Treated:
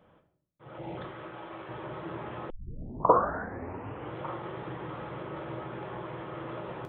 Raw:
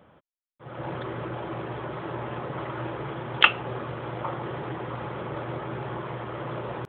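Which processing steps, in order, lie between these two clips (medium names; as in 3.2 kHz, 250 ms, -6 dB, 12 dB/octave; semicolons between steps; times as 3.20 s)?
0.77–0.97 s: time-frequency box 940–1900 Hz -12 dB; 1.05–1.69 s: bass shelf 450 Hz -9.5 dB; reverberation RT60 0.60 s, pre-delay 6 ms, DRR 3 dB; 2.50 s: tape start 1.67 s; trim -7 dB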